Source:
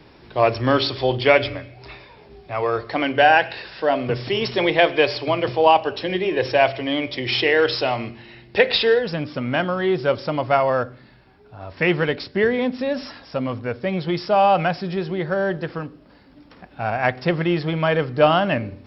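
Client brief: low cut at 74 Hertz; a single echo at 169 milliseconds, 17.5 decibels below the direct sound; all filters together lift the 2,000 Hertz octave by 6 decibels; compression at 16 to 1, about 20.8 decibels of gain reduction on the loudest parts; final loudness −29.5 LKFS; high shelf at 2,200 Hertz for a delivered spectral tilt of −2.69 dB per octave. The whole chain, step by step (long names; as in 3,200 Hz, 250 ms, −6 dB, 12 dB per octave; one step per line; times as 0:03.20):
high-pass filter 74 Hz
parametric band 2,000 Hz +4 dB
high-shelf EQ 2,200 Hz +6.5 dB
downward compressor 16 to 1, threshold −28 dBFS
single-tap delay 169 ms −17.5 dB
level +3 dB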